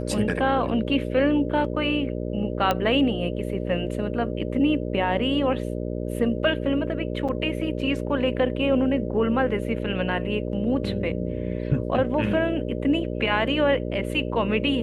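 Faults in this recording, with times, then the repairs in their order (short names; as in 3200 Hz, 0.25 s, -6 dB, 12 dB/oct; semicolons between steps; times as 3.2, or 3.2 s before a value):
buzz 60 Hz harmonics 10 -29 dBFS
2.71 pop -9 dBFS
7.28–7.29 gap 6.3 ms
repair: de-click; de-hum 60 Hz, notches 10; interpolate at 7.28, 6.3 ms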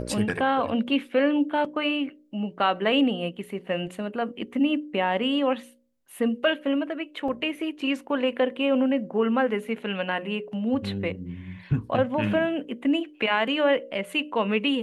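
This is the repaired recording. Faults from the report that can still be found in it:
none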